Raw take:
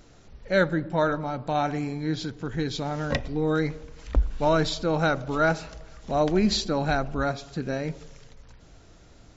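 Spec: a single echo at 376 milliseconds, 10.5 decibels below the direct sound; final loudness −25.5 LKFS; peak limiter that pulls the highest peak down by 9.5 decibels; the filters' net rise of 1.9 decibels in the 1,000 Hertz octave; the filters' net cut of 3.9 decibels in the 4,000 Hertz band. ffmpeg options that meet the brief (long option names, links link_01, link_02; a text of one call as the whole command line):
ffmpeg -i in.wav -af "equalizer=frequency=1000:width_type=o:gain=3,equalizer=frequency=4000:width_type=o:gain=-4.5,alimiter=limit=-18.5dB:level=0:latency=1,aecho=1:1:376:0.299,volume=3.5dB" out.wav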